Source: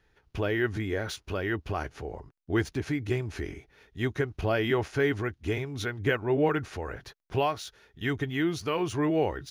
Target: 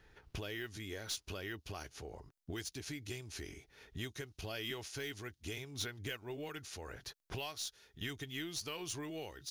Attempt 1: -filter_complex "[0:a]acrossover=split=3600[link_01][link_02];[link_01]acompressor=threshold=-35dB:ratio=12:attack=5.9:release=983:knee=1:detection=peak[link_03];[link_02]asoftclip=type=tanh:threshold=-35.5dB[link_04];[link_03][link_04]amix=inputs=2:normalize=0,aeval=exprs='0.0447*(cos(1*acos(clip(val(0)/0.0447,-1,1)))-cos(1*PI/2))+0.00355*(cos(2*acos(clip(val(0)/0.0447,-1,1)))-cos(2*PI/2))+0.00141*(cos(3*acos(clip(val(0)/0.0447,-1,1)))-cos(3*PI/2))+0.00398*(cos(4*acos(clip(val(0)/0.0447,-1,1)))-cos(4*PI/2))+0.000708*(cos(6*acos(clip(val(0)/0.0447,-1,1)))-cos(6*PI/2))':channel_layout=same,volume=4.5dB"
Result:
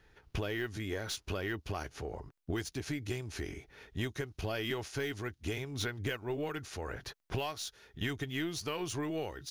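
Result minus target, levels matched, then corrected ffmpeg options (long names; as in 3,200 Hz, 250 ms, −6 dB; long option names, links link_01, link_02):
downward compressor: peak gain reduction −8 dB
-filter_complex "[0:a]acrossover=split=3600[link_01][link_02];[link_01]acompressor=threshold=-43.5dB:ratio=12:attack=5.9:release=983:knee=1:detection=peak[link_03];[link_02]asoftclip=type=tanh:threshold=-35.5dB[link_04];[link_03][link_04]amix=inputs=2:normalize=0,aeval=exprs='0.0447*(cos(1*acos(clip(val(0)/0.0447,-1,1)))-cos(1*PI/2))+0.00355*(cos(2*acos(clip(val(0)/0.0447,-1,1)))-cos(2*PI/2))+0.00141*(cos(3*acos(clip(val(0)/0.0447,-1,1)))-cos(3*PI/2))+0.00398*(cos(4*acos(clip(val(0)/0.0447,-1,1)))-cos(4*PI/2))+0.000708*(cos(6*acos(clip(val(0)/0.0447,-1,1)))-cos(6*PI/2))':channel_layout=same,volume=4.5dB"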